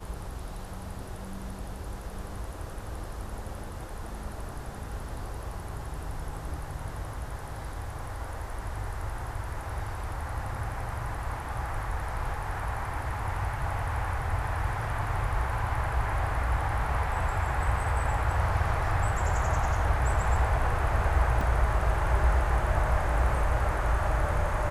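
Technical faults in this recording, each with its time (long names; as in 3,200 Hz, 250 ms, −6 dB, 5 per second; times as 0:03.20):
0:21.41: drop-out 2.6 ms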